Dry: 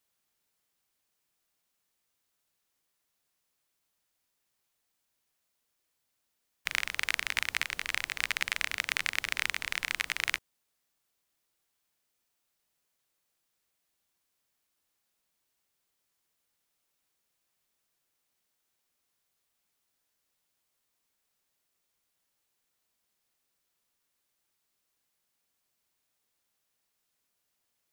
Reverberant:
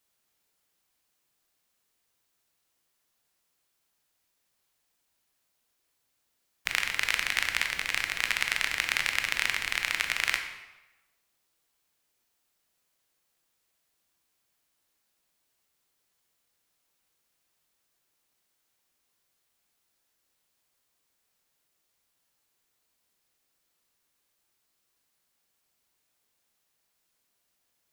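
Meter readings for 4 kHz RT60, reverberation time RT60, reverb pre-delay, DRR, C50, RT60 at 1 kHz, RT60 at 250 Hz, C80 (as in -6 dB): 0.80 s, 1.1 s, 15 ms, 5.0 dB, 7.0 dB, 1.1 s, 1.1 s, 9.5 dB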